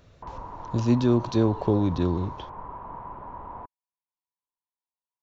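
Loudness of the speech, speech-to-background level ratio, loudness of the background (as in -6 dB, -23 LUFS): -24.5 LUFS, 15.5 dB, -40.0 LUFS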